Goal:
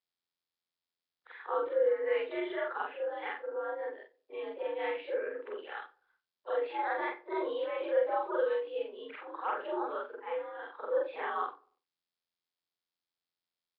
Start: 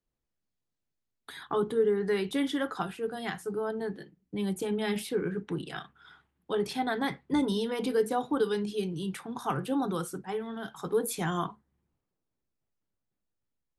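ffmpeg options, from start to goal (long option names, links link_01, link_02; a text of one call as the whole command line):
ffmpeg -i in.wav -filter_complex "[0:a]afftfilt=real='re':imag='-im':win_size=4096:overlap=0.75,agate=range=-33dB:threshold=-47dB:ratio=3:detection=peak,asplit=2[link_01][link_02];[link_02]adelay=96,lowpass=frequency=1100:poles=1,volume=-23dB,asplit=2[link_03][link_04];[link_04]adelay=96,lowpass=frequency=1100:poles=1,volume=0.45,asplit=2[link_05][link_06];[link_06]adelay=96,lowpass=frequency=1100:poles=1,volume=0.45[link_07];[link_03][link_05][link_07]amix=inputs=3:normalize=0[link_08];[link_01][link_08]amix=inputs=2:normalize=0,highpass=frequency=360:width_type=q:width=0.5412,highpass=frequency=360:width_type=q:width=1.307,lowpass=frequency=2800:width_type=q:width=0.5176,lowpass=frequency=2800:width_type=q:width=0.7071,lowpass=frequency=2800:width_type=q:width=1.932,afreqshift=76,asplit=2[link_09][link_10];[link_10]adelay=90,highpass=300,lowpass=3400,asoftclip=type=hard:threshold=-31dB,volume=-23dB[link_11];[link_09][link_11]amix=inputs=2:normalize=0,volume=3.5dB" -ar 11025 -c:a nellymoser out.flv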